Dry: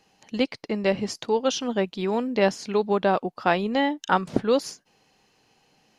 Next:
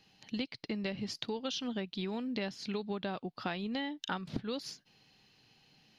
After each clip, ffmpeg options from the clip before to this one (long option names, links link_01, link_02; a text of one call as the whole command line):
ffmpeg -i in.wav -af "equalizer=frequency=125:width_type=o:width=1:gain=5,equalizer=frequency=500:width_type=o:width=1:gain=-6,equalizer=frequency=1000:width_type=o:width=1:gain=-5,equalizer=frequency=4000:width_type=o:width=1:gain=8,equalizer=frequency=8000:width_type=o:width=1:gain=-10,acompressor=threshold=-31dB:ratio=6,volume=-2.5dB" out.wav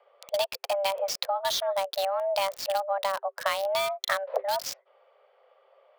ffmpeg -i in.wav -filter_complex "[0:a]afreqshift=390,acrossover=split=1900[link_01][link_02];[link_02]acrusher=bits=6:mix=0:aa=0.000001[link_03];[link_01][link_03]amix=inputs=2:normalize=0,volume=9dB" out.wav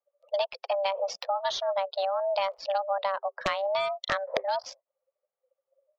ffmpeg -i in.wav -af "aeval=exprs='(mod(4.47*val(0)+1,2)-1)/4.47':channel_layout=same,highshelf=frequency=5600:gain=-11.5,afftdn=noise_reduction=31:noise_floor=-43" out.wav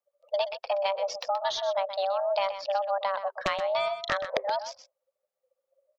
ffmpeg -i in.wav -af "aecho=1:1:126:0.282" out.wav